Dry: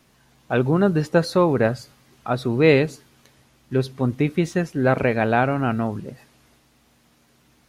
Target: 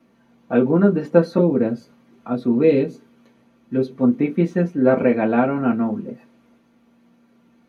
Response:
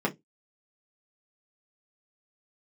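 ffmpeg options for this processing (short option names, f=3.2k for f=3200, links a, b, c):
-filter_complex "[0:a]asettb=1/sr,asplit=3[a][b][c];[a]atrim=end=1.384[d];[b]atrim=start=1.38:end=3.91,asetpts=PTS-STARTPTS,afade=t=in:d=0.004:c=qsin,afade=t=out:st=2.526:d=0.004:c=qsin,acrossover=split=460|3000[e][f][g];[f]acompressor=threshold=-30dB:ratio=6[h];[e][h][g]amix=inputs=3:normalize=0[i];[c]atrim=start=3.906[j];[d][i]acrossfade=d=0.004:c1=hsin:c2=qsin[k];[k][j]acrossfade=d=0.004:c1=qsin:c2=hsin[l];[1:a]atrim=start_sample=2205,asetrate=52920,aresample=44100[m];[l][m]afir=irnorm=-1:irlink=0,volume=-11dB"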